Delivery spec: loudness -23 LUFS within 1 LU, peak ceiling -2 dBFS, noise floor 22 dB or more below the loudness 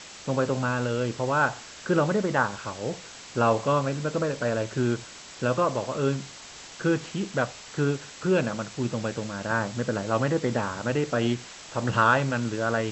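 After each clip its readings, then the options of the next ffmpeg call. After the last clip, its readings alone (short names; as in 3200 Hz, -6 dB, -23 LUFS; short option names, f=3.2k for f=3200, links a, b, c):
noise floor -44 dBFS; noise floor target -49 dBFS; loudness -27.0 LUFS; peak -8.0 dBFS; loudness target -23.0 LUFS
-> -af "afftdn=nr=6:nf=-44"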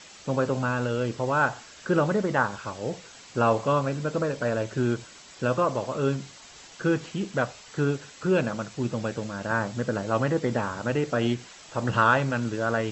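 noise floor -48 dBFS; noise floor target -49 dBFS
-> -af "afftdn=nr=6:nf=-48"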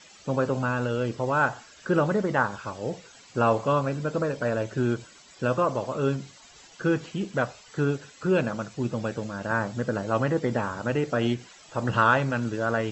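noise floor -52 dBFS; loudness -27.0 LUFS; peak -8.0 dBFS; loudness target -23.0 LUFS
-> -af "volume=4dB"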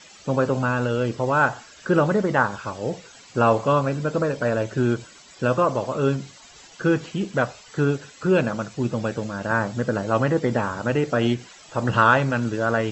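loudness -23.0 LUFS; peak -4.0 dBFS; noise floor -48 dBFS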